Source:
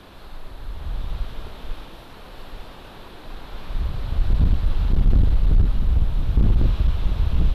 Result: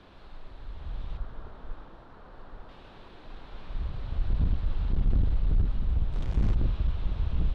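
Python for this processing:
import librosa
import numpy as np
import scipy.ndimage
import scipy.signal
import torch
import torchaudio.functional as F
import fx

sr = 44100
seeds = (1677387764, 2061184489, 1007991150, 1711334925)

y = fx.high_shelf_res(x, sr, hz=1900.0, db=-7.0, q=1.5, at=(1.17, 2.69))
y = fx.sample_gate(y, sr, floor_db=-25.5, at=(6.12, 6.53), fade=0.02)
y = fx.air_absorb(y, sr, metres=100.0)
y = y * 10.0 ** (-8.0 / 20.0)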